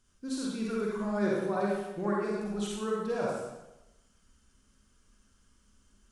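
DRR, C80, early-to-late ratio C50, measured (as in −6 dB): −4.5 dB, 1.5 dB, −3.0 dB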